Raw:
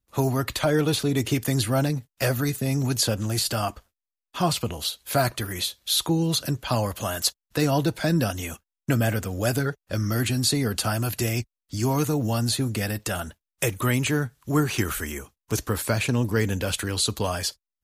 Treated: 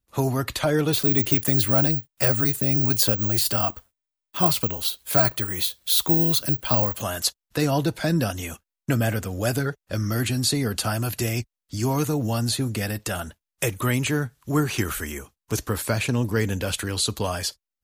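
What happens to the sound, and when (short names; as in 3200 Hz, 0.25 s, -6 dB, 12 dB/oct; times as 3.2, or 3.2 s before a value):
0.93–7.02 careless resampling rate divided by 2×, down none, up zero stuff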